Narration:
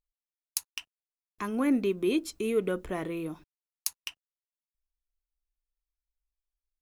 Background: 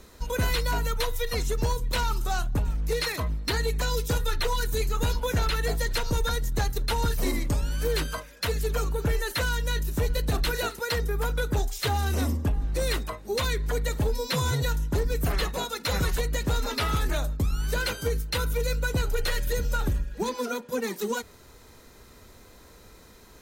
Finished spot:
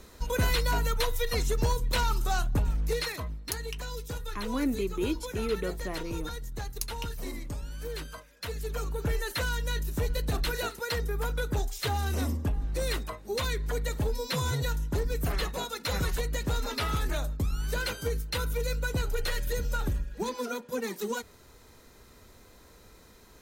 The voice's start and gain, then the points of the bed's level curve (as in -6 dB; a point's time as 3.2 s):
2.95 s, -3.5 dB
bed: 2.81 s -0.5 dB
3.48 s -10.5 dB
8.25 s -10.5 dB
9.12 s -3.5 dB